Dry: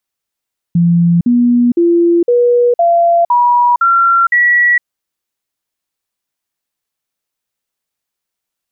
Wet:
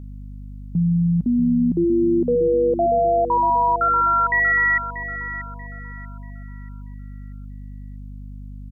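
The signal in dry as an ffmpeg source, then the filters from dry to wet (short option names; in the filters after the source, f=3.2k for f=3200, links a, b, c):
-f lavfi -i "aevalsrc='0.473*clip(min(mod(t,0.51),0.46-mod(t,0.51))/0.005,0,1)*sin(2*PI*171*pow(2,floor(t/0.51)/2)*mod(t,0.51))':d=4.08:s=44100"
-filter_complex "[0:a]alimiter=limit=-15dB:level=0:latency=1:release=20,asplit=2[a][b];[b]adelay=636,lowpass=f=1.9k:p=1,volume=-9.5dB,asplit=2[c][d];[d]adelay=636,lowpass=f=1.9k:p=1,volume=0.43,asplit=2[e][f];[f]adelay=636,lowpass=f=1.9k:p=1,volume=0.43,asplit=2[g][h];[h]adelay=636,lowpass=f=1.9k:p=1,volume=0.43,asplit=2[i][j];[j]adelay=636,lowpass=f=1.9k:p=1,volume=0.43[k];[c][e][g][i][k]amix=inputs=5:normalize=0[l];[a][l]amix=inputs=2:normalize=0,aeval=exprs='val(0)+0.02*(sin(2*PI*50*n/s)+sin(2*PI*2*50*n/s)/2+sin(2*PI*3*50*n/s)/3+sin(2*PI*4*50*n/s)/4+sin(2*PI*5*50*n/s)/5)':c=same"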